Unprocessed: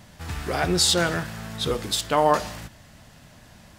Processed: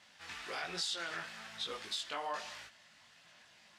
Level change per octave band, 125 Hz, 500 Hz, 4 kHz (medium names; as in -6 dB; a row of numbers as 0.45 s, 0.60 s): -30.5 dB, -22.0 dB, -13.5 dB